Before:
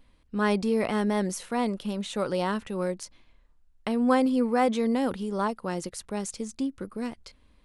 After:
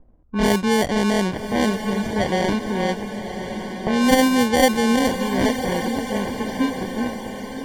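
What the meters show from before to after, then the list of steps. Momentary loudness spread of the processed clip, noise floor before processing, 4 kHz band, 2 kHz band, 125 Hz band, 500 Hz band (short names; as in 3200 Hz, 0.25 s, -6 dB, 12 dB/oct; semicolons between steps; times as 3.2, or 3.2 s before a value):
12 LU, -61 dBFS, +13.0 dB, +11.0 dB, +8.5 dB, +6.5 dB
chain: sample-and-hold 34×; low-pass opened by the level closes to 750 Hz, open at -19.5 dBFS; diffused feedback echo 1.137 s, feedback 51%, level -8.5 dB; gain +6.5 dB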